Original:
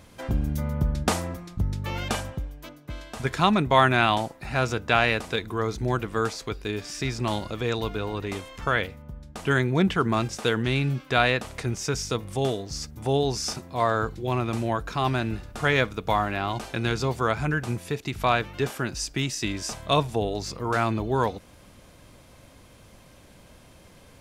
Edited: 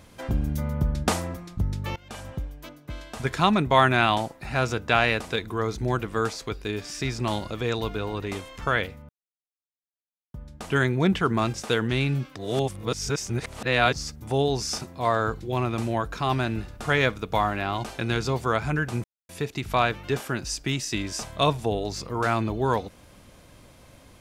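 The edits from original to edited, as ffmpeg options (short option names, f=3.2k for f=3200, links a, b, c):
-filter_complex "[0:a]asplit=6[a][b][c][d][e][f];[a]atrim=end=1.96,asetpts=PTS-STARTPTS,afade=t=out:st=1.956:d=0.004:c=hsin:silence=0.0749894[g];[b]atrim=start=1.96:end=9.09,asetpts=PTS-STARTPTS,afade=t=in:d=0.39:c=qua:silence=0.0749894,afade=t=out:st=7.126:d=0.004:c=hsin,apad=pad_dur=1.25[h];[c]atrim=start=9.09:end=11.112,asetpts=PTS-STARTPTS,afade=t=in:d=0.004:c=hsin[i];[d]atrim=start=11.108:end=12.682,asetpts=PTS-STARTPTS,areverse[j];[e]atrim=start=12.678:end=17.79,asetpts=PTS-STARTPTS,afade=t=out:st=5.108:d=0.004:c=hsin,apad=pad_dur=0.25[k];[f]atrim=start=17.79,asetpts=PTS-STARTPTS,afade=t=in:d=0.004:c=hsin[l];[g][h][i]concat=n=3:v=0:a=1[m];[m][j]acrossfade=d=0.004:c1=hsin:c2=hsin[n];[k][l]concat=n=2:v=0:a=1[o];[n][o]acrossfade=d=0.004:c1=hsin:c2=hsin"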